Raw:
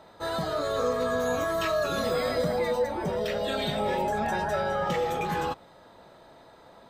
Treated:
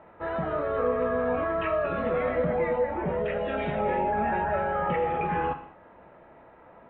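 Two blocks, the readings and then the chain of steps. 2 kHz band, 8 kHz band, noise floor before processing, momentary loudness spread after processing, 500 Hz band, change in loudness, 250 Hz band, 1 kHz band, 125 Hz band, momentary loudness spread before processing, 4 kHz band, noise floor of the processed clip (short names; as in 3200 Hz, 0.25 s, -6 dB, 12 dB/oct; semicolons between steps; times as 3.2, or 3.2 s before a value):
-0.5 dB, under -35 dB, -54 dBFS, 3 LU, +0.5 dB, +0.5 dB, +1.0 dB, +1.5 dB, +0.5 dB, 3 LU, -14.0 dB, -53 dBFS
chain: steep low-pass 2700 Hz 48 dB/oct; non-linear reverb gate 0.26 s falling, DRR 7.5 dB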